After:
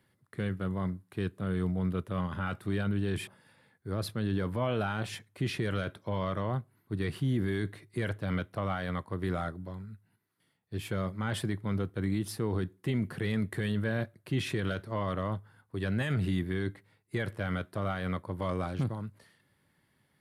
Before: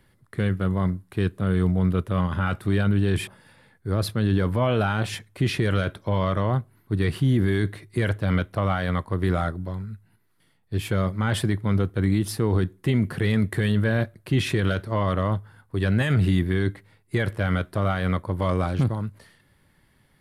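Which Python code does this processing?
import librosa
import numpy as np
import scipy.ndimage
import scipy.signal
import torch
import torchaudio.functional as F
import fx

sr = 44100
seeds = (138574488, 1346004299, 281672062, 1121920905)

y = scipy.signal.sosfilt(scipy.signal.butter(2, 97.0, 'highpass', fs=sr, output='sos'), x)
y = F.gain(torch.from_numpy(y), -8.0).numpy()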